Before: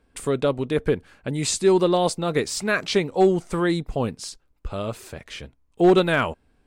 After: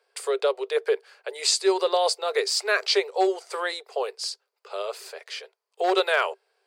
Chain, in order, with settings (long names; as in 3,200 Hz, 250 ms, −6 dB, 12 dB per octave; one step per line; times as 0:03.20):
Chebyshev high-pass filter 390 Hz, order 8
parametric band 4,700 Hz +11 dB 0.29 octaves